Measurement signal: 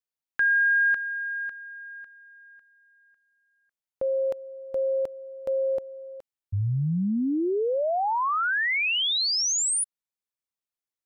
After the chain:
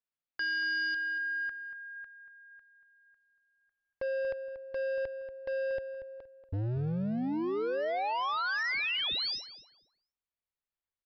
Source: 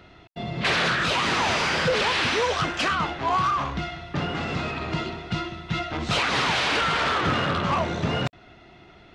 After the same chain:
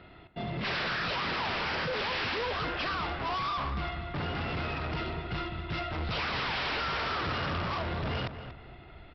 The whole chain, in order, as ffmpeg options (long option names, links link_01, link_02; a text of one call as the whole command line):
ffmpeg -i in.wav -filter_complex "[0:a]lowpass=3600,asubboost=boost=3.5:cutoff=93,aresample=11025,volume=29dB,asoftclip=hard,volume=-29dB,aresample=44100,asplit=2[link_01][link_02];[link_02]adelay=235,lowpass=frequency=2500:poles=1,volume=-10dB,asplit=2[link_03][link_04];[link_04]adelay=235,lowpass=frequency=2500:poles=1,volume=0.3,asplit=2[link_05][link_06];[link_06]adelay=235,lowpass=frequency=2500:poles=1,volume=0.3[link_07];[link_01][link_03][link_05][link_07]amix=inputs=4:normalize=0,volume=-2dB" out.wav